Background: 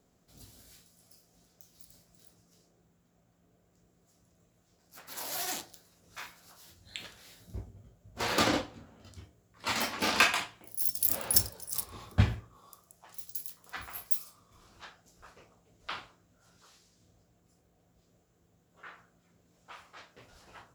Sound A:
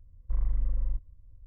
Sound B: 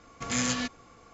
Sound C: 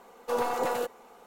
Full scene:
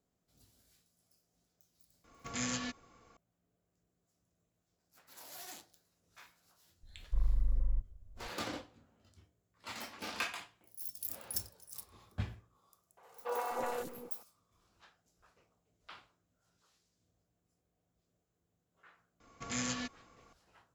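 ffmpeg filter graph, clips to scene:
ffmpeg -i bed.wav -i cue0.wav -i cue1.wav -i cue2.wav -filter_complex "[2:a]asplit=2[link_01][link_02];[0:a]volume=-13.5dB[link_03];[3:a]acrossover=split=360|3800[link_04][link_05][link_06];[link_06]adelay=60[link_07];[link_04]adelay=250[link_08];[link_08][link_05][link_07]amix=inputs=3:normalize=0[link_09];[link_01]atrim=end=1.13,asetpts=PTS-STARTPTS,volume=-8.5dB,afade=type=in:duration=0.004:curve=hsin,afade=type=out:start_time=1.126:duration=0.004:curve=hsin,adelay=2040[link_10];[1:a]atrim=end=1.46,asetpts=PTS-STARTPTS,volume=-3dB,afade=type=in:duration=0.004:curve=hsin,afade=type=out:start_time=1.456:duration=0.004:curve=hsin,adelay=6830[link_11];[link_09]atrim=end=1.26,asetpts=PTS-STARTPTS,volume=-7dB,afade=type=in:duration=0.004:curve=hsin,afade=type=out:start_time=1.256:duration=0.004:curve=hsin,adelay=12970[link_12];[link_02]atrim=end=1.13,asetpts=PTS-STARTPTS,volume=-8.5dB,afade=type=in:duration=0.004:curve=hsin,afade=type=out:start_time=1.126:duration=0.004:curve=hsin,adelay=19200[link_13];[link_03][link_10][link_11][link_12][link_13]amix=inputs=5:normalize=0" out.wav

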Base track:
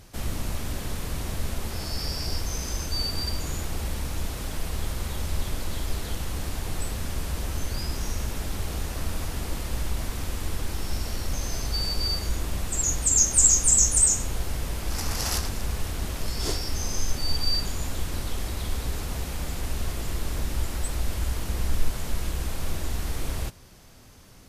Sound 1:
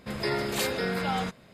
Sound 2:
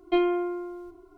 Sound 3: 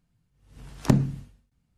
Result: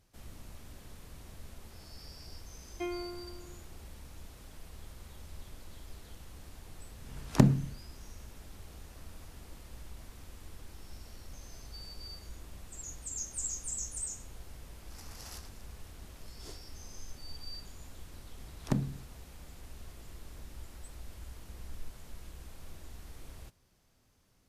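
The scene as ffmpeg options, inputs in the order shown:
ffmpeg -i bed.wav -i cue0.wav -i cue1.wav -i cue2.wav -filter_complex "[3:a]asplit=2[link_01][link_02];[0:a]volume=-19dB[link_03];[2:a]equalizer=frequency=2200:width=4.1:gain=7.5,atrim=end=1.17,asetpts=PTS-STARTPTS,volume=-14.5dB,afade=type=in:duration=0.004:curve=hsin,afade=type=out:start_time=1.166:duration=0.004:curve=hsin,adelay=2680[link_04];[link_01]atrim=end=1.77,asetpts=PTS-STARTPTS,volume=-2dB,afade=type=in:duration=0.004:curve=hsin,afade=type=out:start_time=1.766:duration=0.004:curve=hsin,adelay=286650S[link_05];[link_02]atrim=end=1.77,asetpts=PTS-STARTPTS,volume=-10.5dB,afade=type=in:duration=0.004:curve=hsin,afade=type=out:start_time=1.766:duration=0.004:curve=hsin,adelay=17820[link_06];[link_03][link_04][link_05][link_06]amix=inputs=4:normalize=0" out.wav

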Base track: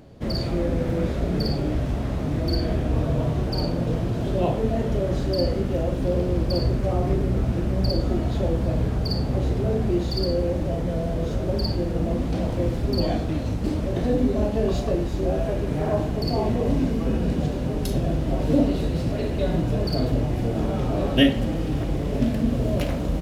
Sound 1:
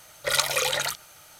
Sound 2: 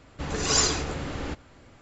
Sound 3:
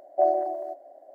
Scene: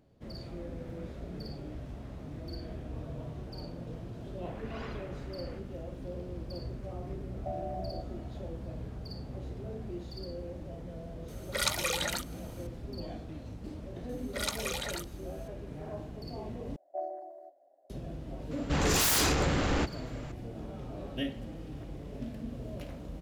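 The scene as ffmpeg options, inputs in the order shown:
ffmpeg -i bed.wav -i cue0.wav -i cue1.wav -i cue2.wav -filter_complex "[2:a]asplit=2[link_01][link_02];[3:a]asplit=2[link_03][link_04];[1:a]asplit=2[link_05][link_06];[0:a]volume=-17.5dB[link_07];[link_01]lowpass=frequency=2800:width=0.5412,lowpass=frequency=2800:width=1.3066[link_08];[link_03]acompressor=threshold=-27dB:ratio=6:attack=3.2:release=140:knee=1:detection=peak[link_09];[link_02]aeval=exprs='0.376*sin(PI/2*7.08*val(0)/0.376)':channel_layout=same[link_10];[link_07]asplit=2[link_11][link_12];[link_11]atrim=end=16.764[link_13];[link_04]atrim=end=1.14,asetpts=PTS-STARTPTS,volume=-15.5dB[link_14];[link_12]atrim=start=17.896[link_15];[link_08]atrim=end=1.81,asetpts=PTS-STARTPTS,volume=-16dB,afade=type=in:duration=0.004:curve=hsin,afade=type=out:start_time=1.806:duration=0.004:curve=hsin,adelay=187425S[link_16];[link_09]atrim=end=1.14,asetpts=PTS-STARTPTS,volume=-7.5dB,afade=type=in:duration=0.004:curve=hsin,afade=type=out:start_time=1.136:duration=0.004:curve=hsin,adelay=7280[link_17];[link_05]atrim=end=1.39,asetpts=PTS-STARTPTS,volume=-7dB,afade=type=in:duration=0.004:curve=hsin,afade=type=out:start_time=1.386:duration=0.004:curve=hsin,adelay=11280[link_18];[link_06]atrim=end=1.39,asetpts=PTS-STARTPTS,volume=-11.5dB,afade=type=in:duration=0.004:curve=hsin,afade=type=out:start_time=1.386:duration=0.004:curve=hsin,adelay=14090[link_19];[link_10]atrim=end=1.81,asetpts=PTS-STARTPTS,volume=-14.5dB,afade=type=in:duration=0.004:curve=hsin,afade=type=out:start_time=1.806:duration=0.004:curve=hsin,adelay=18510[link_20];[link_13][link_14]acrossfade=duration=0.004:curve1=hsin:curve2=hsin[link_21];[link_21][link_15]acrossfade=duration=0.004:curve1=hsin:curve2=hsin[link_22];[link_22][link_16][link_17][link_18][link_19][link_20]amix=inputs=6:normalize=0" out.wav

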